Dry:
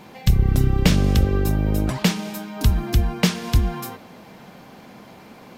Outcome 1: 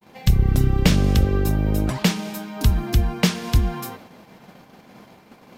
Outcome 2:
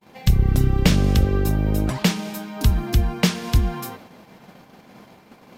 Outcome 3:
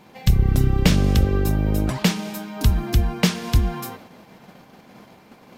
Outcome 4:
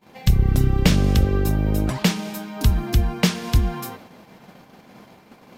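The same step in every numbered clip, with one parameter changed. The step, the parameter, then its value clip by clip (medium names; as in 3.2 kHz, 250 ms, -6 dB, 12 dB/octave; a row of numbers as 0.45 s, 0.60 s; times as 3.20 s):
gate, range: -58 dB, -40 dB, -6 dB, -25 dB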